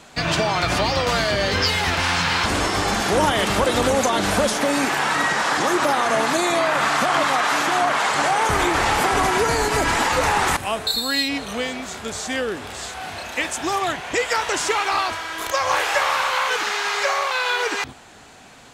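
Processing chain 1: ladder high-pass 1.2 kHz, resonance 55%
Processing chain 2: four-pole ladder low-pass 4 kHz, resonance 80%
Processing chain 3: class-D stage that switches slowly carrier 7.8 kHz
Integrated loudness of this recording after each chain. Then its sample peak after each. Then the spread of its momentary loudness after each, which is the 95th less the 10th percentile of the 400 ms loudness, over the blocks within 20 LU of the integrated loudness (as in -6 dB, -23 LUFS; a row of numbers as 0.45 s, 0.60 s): -27.5 LUFS, -27.5 LUFS, -20.5 LUFS; -12.5 dBFS, -8.5 dBFS, -6.5 dBFS; 8 LU, 9 LU, 6 LU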